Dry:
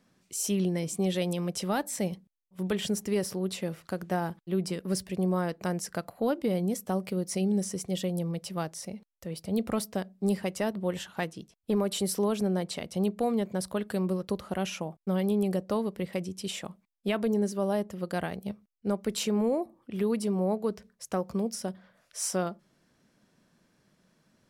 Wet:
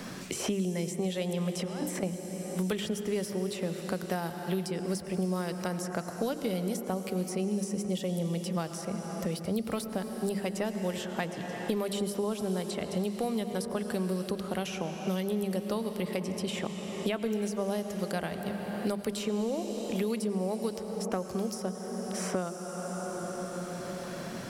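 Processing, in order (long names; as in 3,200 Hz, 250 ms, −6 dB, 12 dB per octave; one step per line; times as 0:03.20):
mains-hum notches 50/100/150/200/250/300/350 Hz
0:01.59–0:02.03: compressor whose output falls as the input rises −36 dBFS, ratio −0.5
convolution reverb RT60 3.5 s, pre-delay 78 ms, DRR 8.5 dB
multiband upward and downward compressor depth 100%
level −3 dB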